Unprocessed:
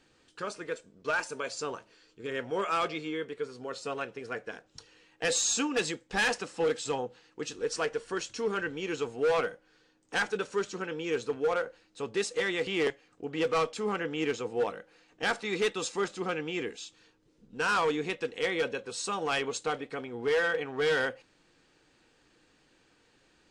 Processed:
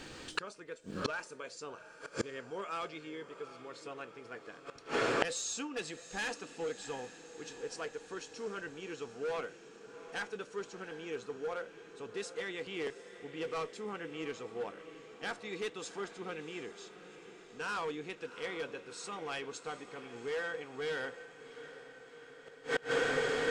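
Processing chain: echo that smears into a reverb 737 ms, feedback 65%, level -13 dB; inverted gate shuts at -36 dBFS, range -27 dB; trim +17 dB

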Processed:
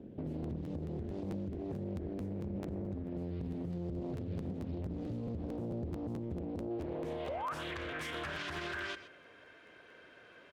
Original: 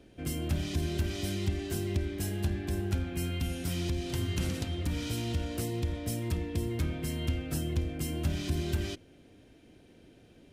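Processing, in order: band-pass sweep 220 Hz -> 1.4 kHz, 6.49–7.68 s; painted sound rise, 7.28–7.54 s, 500–1400 Hz -44 dBFS; compression 12:1, threshold -48 dBFS, peak gain reduction 14.5 dB; comb 1.9 ms, depth 40%; on a send: delay 126 ms -16.5 dB; on the sum: peak limiter -46.5 dBFS, peak gain reduction 7.5 dB; crackling interface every 0.22 s, samples 512, repeat, from 0.42 s; loudspeaker Doppler distortion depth 0.8 ms; trim +15.5 dB

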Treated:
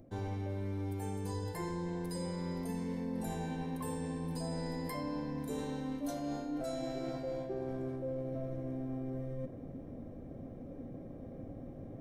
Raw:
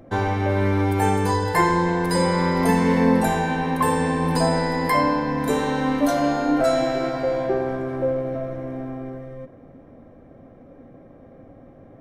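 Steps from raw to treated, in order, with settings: peaking EQ 1.4 kHz -12.5 dB 2.5 oct; reverse; compression 10:1, threshold -38 dBFS, peak gain reduction 21.5 dB; reverse; trim +2.5 dB

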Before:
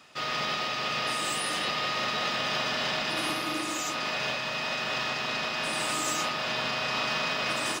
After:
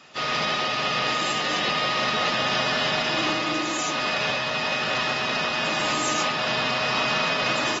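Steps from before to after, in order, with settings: trim +4 dB; AAC 24 kbps 44.1 kHz

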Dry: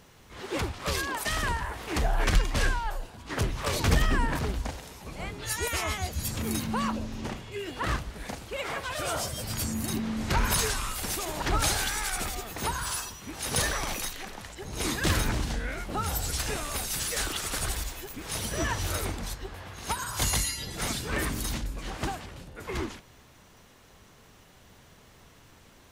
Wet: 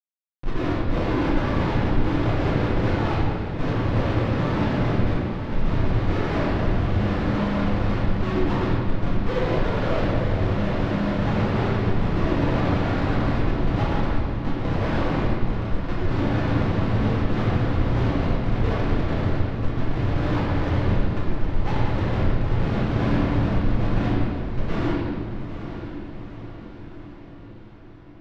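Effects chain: elliptic band-pass 110–2600 Hz, stop band 40 dB; tilt shelf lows +5.5 dB, about 710 Hz; band-stop 760 Hz, Q 25; Schmitt trigger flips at -34 dBFS; distance through air 190 m; echo that smears into a reverb 799 ms, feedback 57%, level -10 dB; reverberation RT60 2.0 s, pre-delay 4 ms, DRR -7 dB; speed mistake 48 kHz file played as 44.1 kHz; trim +3 dB

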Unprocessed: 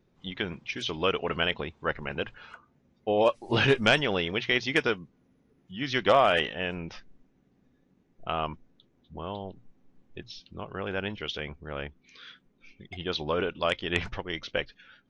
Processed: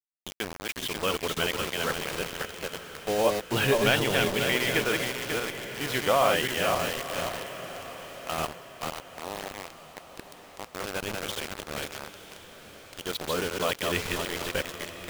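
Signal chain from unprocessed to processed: backward echo that repeats 270 ms, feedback 59%, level -3 dB; bit crusher 5-bit; echo that smears into a reverb 986 ms, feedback 45%, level -12.5 dB; trim -2.5 dB

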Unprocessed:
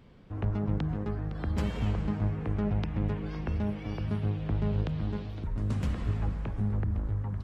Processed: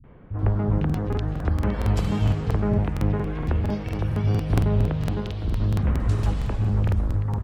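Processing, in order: three bands offset in time lows, mids, highs 40/390 ms, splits 180/2300 Hz; crackling interface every 0.23 s, samples 2048, repeat, from 0.85 s; trim +8.5 dB

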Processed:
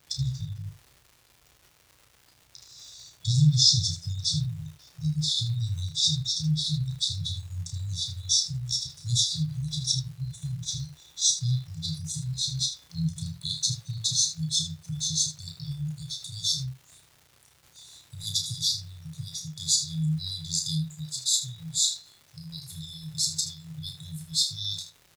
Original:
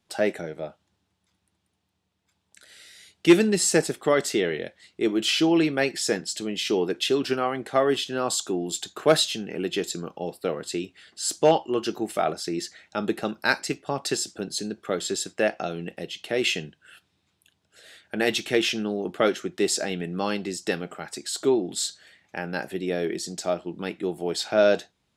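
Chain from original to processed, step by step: pitch bend over the whole clip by -8 st ending unshifted; FFT band-reject 170–3400 Hz; in parallel at -2 dB: gain riding within 5 dB 0.5 s; on the sum: crackle 350 per s -46 dBFS; on a send: early reflections 32 ms -6 dB, 78 ms -11.5 dB; on the sum: trim +1.5 dB

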